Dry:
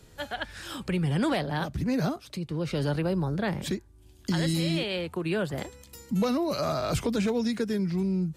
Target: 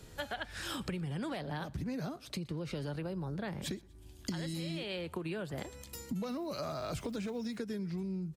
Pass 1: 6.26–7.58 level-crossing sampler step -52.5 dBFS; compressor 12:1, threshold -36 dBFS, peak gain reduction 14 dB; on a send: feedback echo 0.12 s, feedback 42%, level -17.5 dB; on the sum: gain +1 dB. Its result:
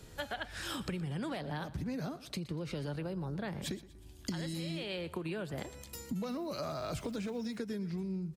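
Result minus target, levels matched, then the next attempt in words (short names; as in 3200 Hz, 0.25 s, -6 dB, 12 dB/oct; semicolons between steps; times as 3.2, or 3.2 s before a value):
echo-to-direct +7 dB
6.26–7.58 level-crossing sampler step -52.5 dBFS; compressor 12:1, threshold -36 dBFS, peak gain reduction 14 dB; on a send: feedback echo 0.12 s, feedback 42%, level -24.5 dB; on the sum: gain +1 dB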